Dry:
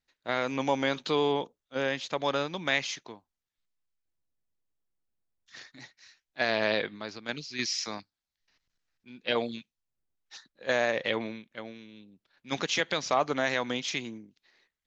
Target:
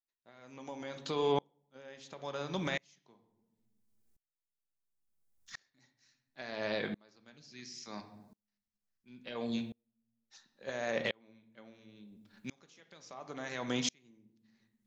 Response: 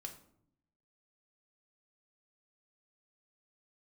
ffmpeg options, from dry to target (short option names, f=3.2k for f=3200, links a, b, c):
-filter_complex "[0:a]bass=f=250:g=3,treble=f=4k:g=14,acompressor=threshold=-29dB:ratio=6,alimiter=limit=-21dB:level=0:latency=1:release=206,asplit=2[a][b];[1:a]atrim=start_sample=2205,asetrate=31311,aresample=44100,lowpass=2.5k[c];[b][c]afir=irnorm=-1:irlink=0,volume=4dB[d];[a][d]amix=inputs=2:normalize=0,aeval=exprs='val(0)*pow(10,-34*if(lt(mod(-0.72*n/s,1),2*abs(-0.72)/1000),1-mod(-0.72*n/s,1)/(2*abs(-0.72)/1000),(mod(-0.72*n/s,1)-2*abs(-0.72)/1000)/(1-2*abs(-0.72)/1000))/20)':c=same"